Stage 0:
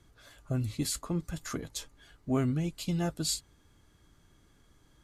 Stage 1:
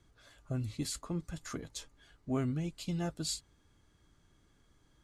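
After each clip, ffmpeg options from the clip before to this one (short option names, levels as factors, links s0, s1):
-af "lowpass=10000,volume=0.596"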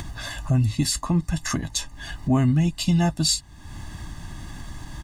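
-filter_complex "[0:a]asplit=2[s0][s1];[s1]alimiter=level_in=1.78:limit=0.0631:level=0:latency=1:release=492,volume=0.562,volume=1.33[s2];[s0][s2]amix=inputs=2:normalize=0,aecho=1:1:1.1:0.78,acompressor=mode=upward:threshold=0.0355:ratio=2.5,volume=2.24"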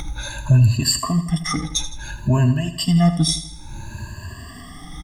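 -af "afftfilt=real='re*pow(10,23/40*sin(2*PI*(1.4*log(max(b,1)*sr/1024/100)/log(2)-(0.58)*(pts-256)/sr)))':imag='im*pow(10,23/40*sin(2*PI*(1.4*log(max(b,1)*sr/1024/100)/log(2)-(0.58)*(pts-256)/sr)))':win_size=1024:overlap=0.75,aecho=1:1:81|162|243|324|405:0.251|0.118|0.0555|0.0261|0.0123,aeval=exprs='0.668*(cos(1*acos(clip(val(0)/0.668,-1,1)))-cos(1*PI/2))+0.0422*(cos(2*acos(clip(val(0)/0.668,-1,1)))-cos(2*PI/2))':c=same,volume=0.794"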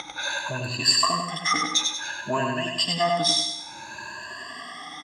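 -filter_complex "[0:a]asplit=2[s0][s1];[s1]asoftclip=type=tanh:threshold=0.224,volume=0.562[s2];[s0][s2]amix=inputs=2:normalize=0,highpass=560,lowpass=5200,aecho=1:1:97|194|291|388|485:0.631|0.265|0.111|0.0467|0.0196"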